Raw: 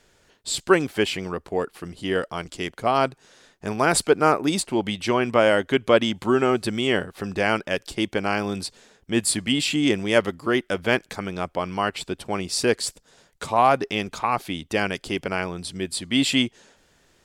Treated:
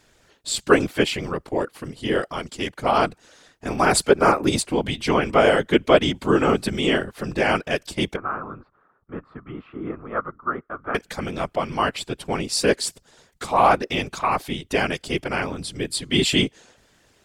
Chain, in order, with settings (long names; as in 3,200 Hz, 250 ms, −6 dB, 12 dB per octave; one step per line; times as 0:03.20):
0:08.16–0:10.95: transistor ladder low-pass 1,300 Hz, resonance 85%
random phases in short frames
level +1.5 dB